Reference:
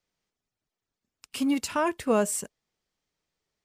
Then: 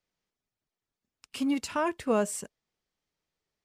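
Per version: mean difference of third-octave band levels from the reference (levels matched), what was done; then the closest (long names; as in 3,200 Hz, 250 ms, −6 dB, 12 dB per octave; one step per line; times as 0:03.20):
1.0 dB: high-shelf EQ 11,000 Hz −10 dB
level −2.5 dB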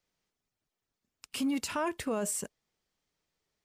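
3.5 dB: brickwall limiter −24.5 dBFS, peak gain reduction 11 dB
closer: first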